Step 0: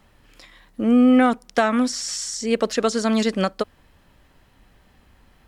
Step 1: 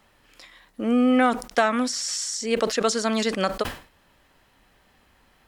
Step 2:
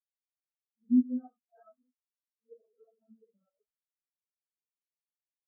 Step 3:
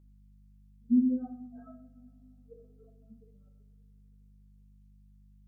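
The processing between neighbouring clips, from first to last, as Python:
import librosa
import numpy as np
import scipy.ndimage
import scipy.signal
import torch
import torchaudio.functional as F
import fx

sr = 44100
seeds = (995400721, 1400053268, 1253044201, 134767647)

y1 = fx.low_shelf(x, sr, hz=260.0, db=-10.0)
y1 = fx.sustainer(y1, sr, db_per_s=140.0)
y2 = fx.phase_scramble(y1, sr, seeds[0], window_ms=200)
y2 = fx.spectral_expand(y2, sr, expansion=4.0)
y2 = y2 * librosa.db_to_amplitude(-7.0)
y3 = fx.add_hum(y2, sr, base_hz=50, snr_db=25)
y3 = fx.rev_double_slope(y3, sr, seeds[1], early_s=0.59, late_s=3.8, knee_db=-22, drr_db=4.5)
y3 = y3 * librosa.db_to_amplitude(3.5)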